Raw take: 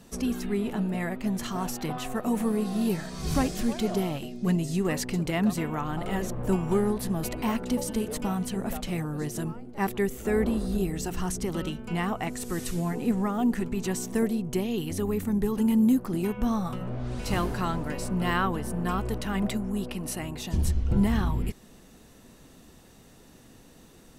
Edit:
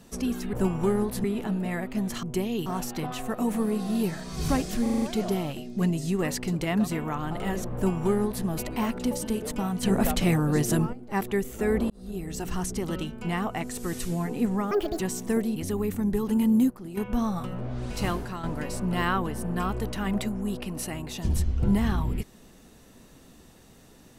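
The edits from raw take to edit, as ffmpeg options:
-filter_complex "[0:a]asplit=19[a][b][c][d][e][f][g][h][i][j][k][l][m][n][o][p][q][r][s];[a]atrim=end=0.532[t];[b]atrim=start=6.408:end=7.122[u];[c]atrim=start=0.528:end=1.522[v];[d]atrim=start=14.418:end=14.852[w];[e]atrim=start=1.518:end=3.722[x];[f]atrim=start=3.678:end=3.722[y];[g]atrim=start=3.678:end=3.722[z];[h]atrim=start=3.678:end=3.722[aa];[i]atrim=start=3.678:end=3.722[ab];[j]atrim=start=3.678:end=8.492[ac];[k]atrim=start=8.488:end=9.592,asetpts=PTS-STARTPTS,volume=8dB[ad];[l]atrim=start=9.588:end=10.56,asetpts=PTS-STARTPTS,afade=t=out:st=0.968:d=0.004:c=hsin[ae];[m]atrim=start=10.56:end=13.374,asetpts=PTS-STARTPTS,afade=t=in:d=0.57[af];[n]atrim=start=13.37:end=13.85,asetpts=PTS-STARTPTS,asetrate=74970,aresample=44100[ag];[o]atrim=start=13.846:end=14.422[ah];[p]atrim=start=14.848:end=15.992[ai];[q]atrim=start=15.988:end=16.262,asetpts=PTS-STARTPTS,volume=-10dB[aj];[r]atrim=start=16.258:end=17.72,asetpts=PTS-STARTPTS,afade=t=out:st=1.062:d=0.4:silence=0.316228[ak];[s]atrim=start=17.72,asetpts=PTS-STARTPTS,afade=t=in:d=0.004:c=hsin:silence=0.316228[al];[t][u]acrossfade=d=0.004:c1=hsin:c2=hsin[am];[am][v]acrossfade=d=0.004:c1=hsin:c2=hsin[an];[an][w]acrossfade=d=0.004:c1=hsin:c2=hsin[ao];[ao][x]acrossfade=d=0.004:c1=hsin:c2=hsin[ap];[ap][y]acrossfade=d=0.004:c1=hsin:c2=hsin[aq];[aq][z]acrossfade=d=0.004:c1=hsin:c2=hsin[ar];[ar][aa]acrossfade=d=0.004:c1=hsin:c2=hsin[as];[as][ab]acrossfade=d=0.004:c1=hsin:c2=hsin[at];[at][ac]acrossfade=d=0.004:c1=hsin:c2=hsin[au];[au][ad]acrossfade=d=0.004:c1=hsin:c2=hsin[av];[ae][af]concat=n=2:v=0:a=1[aw];[av][aw]acrossfade=d=0.004:c1=hsin:c2=hsin[ax];[ax][ag]acrossfade=d=0.004:c1=hsin:c2=hsin[ay];[ay][ah]acrossfade=d=0.004:c1=hsin:c2=hsin[az];[az][ai]acrossfade=d=0.004:c1=hsin:c2=hsin[ba];[ba][aj]acrossfade=d=0.004:c1=hsin:c2=hsin[bb];[ak][al]concat=n=2:v=0:a=1[bc];[bb][bc]acrossfade=d=0.004:c1=hsin:c2=hsin"

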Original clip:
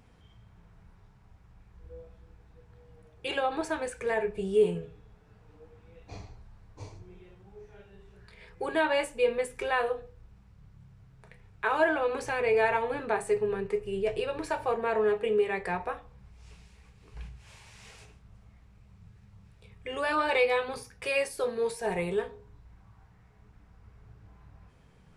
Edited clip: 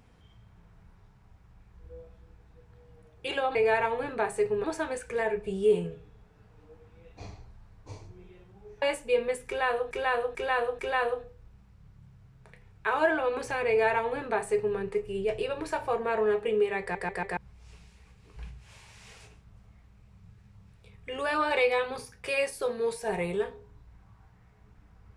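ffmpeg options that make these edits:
-filter_complex "[0:a]asplit=11[a][b][c][d][e][f][g][h][i][j][k];[a]atrim=end=3.552[l];[b]atrim=start=12.458:end=13.552[m];[c]atrim=start=3.548:end=7.732[n];[d]atrim=start=8.918:end=10.012[o];[e]atrim=start=9.568:end=10.012[p];[f]atrim=start=9.568:end=10.012[q];[g]atrim=start=9.568:end=15.732[r];[h]atrim=start=15.588:end=15.732[s];[i]atrim=start=15.588:end=15.732[t];[j]atrim=start=15.588:end=15.732[u];[k]atrim=start=16.148[v];[l][m]acrossfade=d=0.004:c1=hsin:c2=hsin[w];[w][n]acrossfade=d=0.004:c1=hsin:c2=hsin[x];[x][o]acrossfade=d=0.004:c1=hsin:c2=hsin[y];[y][p]acrossfade=d=0.004:c1=hsin:c2=hsin[z];[z][q]acrossfade=d=0.004:c1=hsin:c2=hsin[aa];[aa][r]acrossfade=d=0.004:c1=hsin:c2=hsin[ab];[ab][s]acrossfade=d=0.004:c1=hsin:c2=hsin[ac];[ac][t]acrossfade=d=0.004:c1=hsin:c2=hsin[ad];[ad][u]acrossfade=d=0.004:c1=hsin:c2=hsin[ae];[ae][v]acrossfade=d=0.004:c1=hsin:c2=hsin"

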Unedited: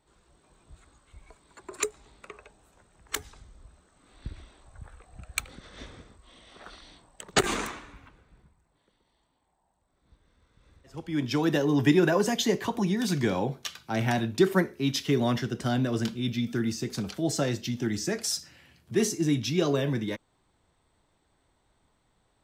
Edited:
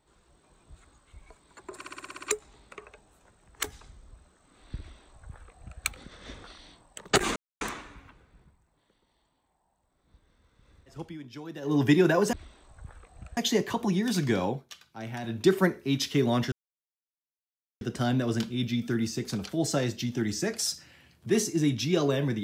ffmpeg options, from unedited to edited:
-filter_complex "[0:a]asplit=18[a][b][c][d][e][f][g][h][i][j][k][l][m][n][o][p][q][r];[a]atrim=end=1.812[s];[b]atrim=start=1.748:end=1.812[t];[c]atrim=start=1.748:end=1.812[u];[d]atrim=start=1.748:end=1.812[v];[e]atrim=start=1.748:end=1.812[w];[f]atrim=start=1.748:end=1.812[x];[g]atrim=start=1.748:end=1.812[y];[h]atrim=start=1.748:end=1.812[z];[i]atrim=start=1.748:end=5.962[aa];[j]atrim=start=6.668:end=7.59,asetpts=PTS-STARTPTS,afade=t=out:st=0.918:d=0.004:c=hsin,apad=pad_dur=0.25[ab];[k]atrim=start=7.59:end=11.16,asetpts=PTS-STARTPTS,afade=t=in:d=0.004:c=hsin,afade=t=out:st=3.43:d=0.14:silence=0.16788[ac];[l]atrim=start=11.16:end=11.59,asetpts=PTS-STARTPTS,volume=-15.5dB[ad];[m]atrim=start=11.59:end=12.312,asetpts=PTS-STARTPTS,afade=t=in:d=0.14:silence=0.16788[ae];[n]atrim=start=4.298:end=5.342[af];[o]atrim=start=12.308:end=13.58,asetpts=PTS-STARTPTS,afade=t=out:st=1.092:d=0.18:silence=0.298538[ag];[p]atrim=start=13.58:end=14.16,asetpts=PTS-STARTPTS,volume=-10.5dB[ah];[q]atrim=start=14.16:end=15.46,asetpts=PTS-STARTPTS,afade=t=in:d=0.18:silence=0.298538,afade=t=out:st=1.296:d=0.004:c=hsin,apad=pad_dur=1.29[ai];[r]atrim=start=15.46,asetpts=PTS-STARTPTS,afade=t=in:d=0.004:c=hsin[aj];[s][t]acrossfade=d=0.004:c1=hsin:c2=hsin[ak];[ak][u]acrossfade=d=0.004:c1=hsin:c2=hsin[al];[al][v]acrossfade=d=0.004:c1=hsin:c2=hsin[am];[am][w]acrossfade=d=0.004:c1=hsin:c2=hsin[an];[an][x]acrossfade=d=0.004:c1=hsin:c2=hsin[ao];[ao][y]acrossfade=d=0.004:c1=hsin:c2=hsin[ap];[ap][z]acrossfade=d=0.004:c1=hsin:c2=hsin[aq];[aq][aa]acrossfade=d=0.004:c1=hsin:c2=hsin[ar];[ab][ac][ad][ae]concat=n=4:v=0:a=1[as];[ar][as]acrossfade=d=0.004:c1=hsin:c2=hsin[at];[at][af]acrossfade=d=0.004:c1=hsin:c2=hsin[au];[ag][ah][ai][aj]concat=n=4:v=0:a=1[av];[au][av]acrossfade=d=0.004:c1=hsin:c2=hsin"

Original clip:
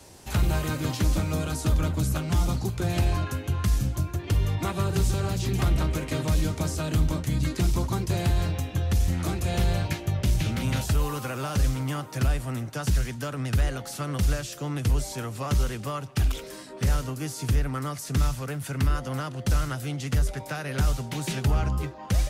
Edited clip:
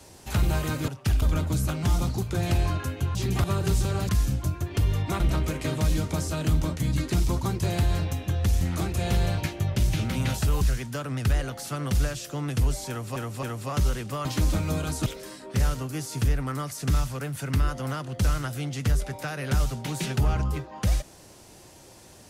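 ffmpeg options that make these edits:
-filter_complex "[0:a]asplit=12[a][b][c][d][e][f][g][h][i][j][k][l];[a]atrim=end=0.882[m];[b]atrim=start=15.988:end=16.332[n];[c]atrim=start=1.688:end=3.622[o];[d]atrim=start=5.378:end=5.672[p];[e]atrim=start=4.728:end=5.382[q];[f]atrim=start=3.618:end=4.732[r];[g]atrim=start=5.668:end=11.082[s];[h]atrim=start=12.888:end=15.442[t];[i]atrim=start=15.168:end=15.442[u];[j]atrim=start=15.168:end=15.992[v];[k]atrim=start=0.878:end=1.692[w];[l]atrim=start=16.328[x];[m][n]acrossfade=d=0.004:c1=hsin:c2=hsin[y];[y][o]acrossfade=d=0.004:c1=hsin:c2=hsin[z];[z][p]acrossfade=d=0.004:c1=hsin:c2=hsin[aa];[aa][q]acrossfade=d=0.004:c1=hsin:c2=hsin[ab];[ab][r]acrossfade=d=0.004:c1=hsin:c2=hsin[ac];[ac][s]acrossfade=d=0.004:c1=hsin:c2=hsin[ad];[ad][t]acrossfade=d=0.004:c1=hsin:c2=hsin[ae];[ae][u]acrossfade=d=0.004:c1=hsin:c2=hsin[af];[af][v]acrossfade=d=0.004:c1=hsin:c2=hsin[ag];[ag][w]acrossfade=d=0.004:c1=hsin:c2=hsin[ah];[ah][x]acrossfade=d=0.004:c1=hsin:c2=hsin"

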